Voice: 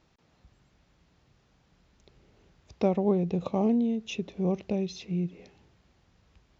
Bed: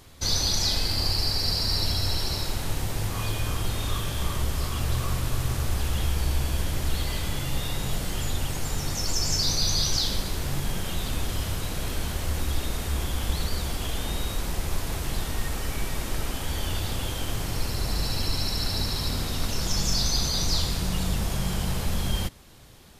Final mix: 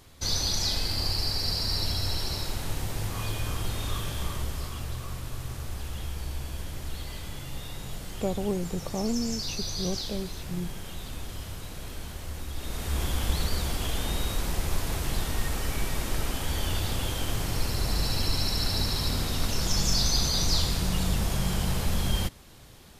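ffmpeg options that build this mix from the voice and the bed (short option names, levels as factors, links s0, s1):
-filter_complex "[0:a]adelay=5400,volume=0.596[s0];[1:a]volume=2,afade=t=out:st=4.08:d=0.89:silence=0.501187,afade=t=in:st=12.54:d=0.51:silence=0.354813[s1];[s0][s1]amix=inputs=2:normalize=0"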